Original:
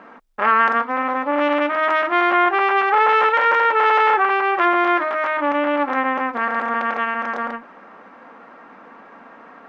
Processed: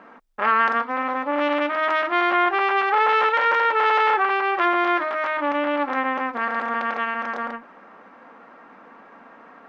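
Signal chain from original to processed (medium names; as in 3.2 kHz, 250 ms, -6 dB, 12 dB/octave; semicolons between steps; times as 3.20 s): dynamic bell 4.3 kHz, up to +5 dB, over -36 dBFS, Q 1.3; trim -3.5 dB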